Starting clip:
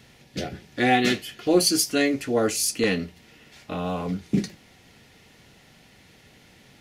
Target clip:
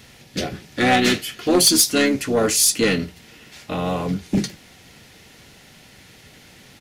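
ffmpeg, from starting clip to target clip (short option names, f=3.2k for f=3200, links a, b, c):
-filter_complex "[0:a]aeval=exprs='0.447*(cos(1*acos(clip(val(0)/0.447,-1,1)))-cos(1*PI/2))+0.178*(cos(2*acos(clip(val(0)/0.447,-1,1)))-cos(2*PI/2))+0.0501*(cos(4*acos(clip(val(0)/0.447,-1,1)))-cos(4*PI/2))+0.0631*(cos(5*acos(clip(val(0)/0.447,-1,1)))-cos(5*PI/2))+0.00398*(cos(8*acos(clip(val(0)/0.447,-1,1)))-cos(8*PI/2))':c=same,highshelf=f=4.1k:g=5.5,asplit=2[a][b];[b]asetrate=33038,aresample=44100,atempo=1.33484,volume=-10dB[c];[a][c]amix=inputs=2:normalize=0"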